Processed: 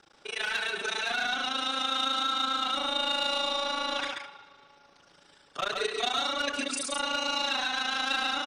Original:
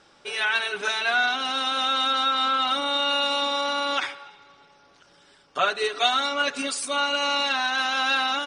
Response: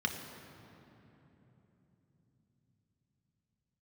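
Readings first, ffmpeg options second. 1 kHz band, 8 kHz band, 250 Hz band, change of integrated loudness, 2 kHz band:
−6.5 dB, −2.5 dB, −3.5 dB, −5.5 dB, −6.5 dB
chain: -filter_complex "[0:a]tremolo=f=27:d=1,acrossover=split=420|3200[link_01][link_02][link_03];[link_02]asoftclip=type=tanh:threshold=-28dB[link_04];[link_01][link_04][link_03]amix=inputs=3:normalize=0,aecho=1:1:133:0.631"

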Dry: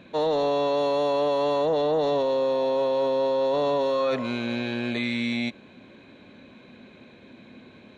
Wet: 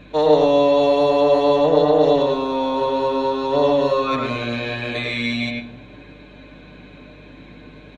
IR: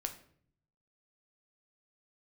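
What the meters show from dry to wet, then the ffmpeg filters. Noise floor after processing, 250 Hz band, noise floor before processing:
−43 dBFS, +7.0 dB, −51 dBFS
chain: -filter_complex "[0:a]aecho=1:1:6.7:0.65,asplit=2[link_01][link_02];[1:a]atrim=start_sample=2205,lowpass=3500,adelay=102[link_03];[link_02][link_03]afir=irnorm=-1:irlink=0,volume=-1dB[link_04];[link_01][link_04]amix=inputs=2:normalize=0,aeval=exprs='val(0)+0.00316*(sin(2*PI*50*n/s)+sin(2*PI*2*50*n/s)/2+sin(2*PI*3*50*n/s)/3+sin(2*PI*4*50*n/s)/4+sin(2*PI*5*50*n/s)/5)':channel_layout=same,volume=3dB"

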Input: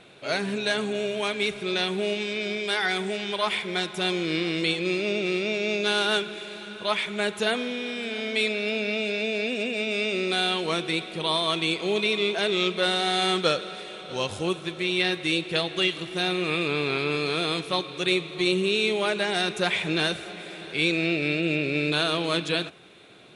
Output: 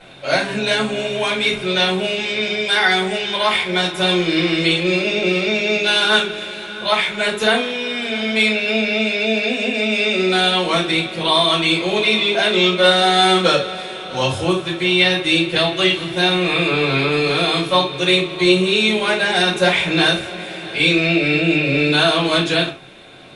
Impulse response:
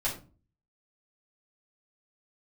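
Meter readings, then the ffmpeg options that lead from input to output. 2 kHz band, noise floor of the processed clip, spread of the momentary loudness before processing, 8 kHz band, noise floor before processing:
+9.5 dB, −30 dBFS, 6 LU, +7.5 dB, −40 dBFS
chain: -filter_complex "[1:a]atrim=start_sample=2205,atrim=end_sample=3969[link_01];[0:a][link_01]afir=irnorm=-1:irlink=0,volume=3.5dB"

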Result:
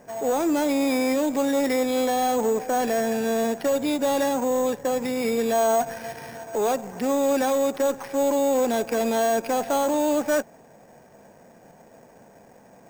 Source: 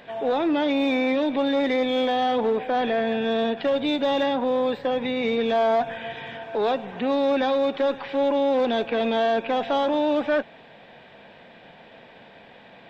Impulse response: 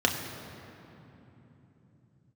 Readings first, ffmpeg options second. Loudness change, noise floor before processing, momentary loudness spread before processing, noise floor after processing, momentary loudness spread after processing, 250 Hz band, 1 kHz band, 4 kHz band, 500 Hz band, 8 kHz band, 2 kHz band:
0.0 dB, −49 dBFS, 4 LU, −52 dBFS, 4 LU, 0.0 dB, −0.5 dB, −4.5 dB, 0.0 dB, can't be measured, −2.5 dB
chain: -af "adynamicsmooth=sensitivity=3.5:basefreq=990,acrusher=samples=6:mix=1:aa=0.000001"

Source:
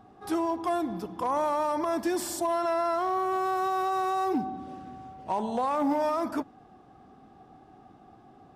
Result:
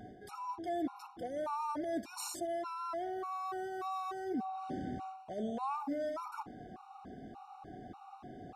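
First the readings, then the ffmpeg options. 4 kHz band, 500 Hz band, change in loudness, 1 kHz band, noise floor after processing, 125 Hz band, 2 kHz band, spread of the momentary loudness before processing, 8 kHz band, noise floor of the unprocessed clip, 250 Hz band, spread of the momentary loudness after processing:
−8.5 dB, −10.5 dB, −11.0 dB, −11.0 dB, −55 dBFS, −4.5 dB, −11.0 dB, 10 LU, −7.5 dB, −55 dBFS, −9.5 dB, 14 LU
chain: -af "highshelf=frequency=11000:gain=-6,areverse,acompressor=threshold=-38dB:ratio=20,areverse,afftfilt=real='re*gt(sin(2*PI*1.7*pts/sr)*(1-2*mod(floor(b*sr/1024/740),2)),0)':imag='im*gt(sin(2*PI*1.7*pts/sr)*(1-2*mod(floor(b*sr/1024/740),2)),0)':win_size=1024:overlap=0.75,volume=6.5dB"

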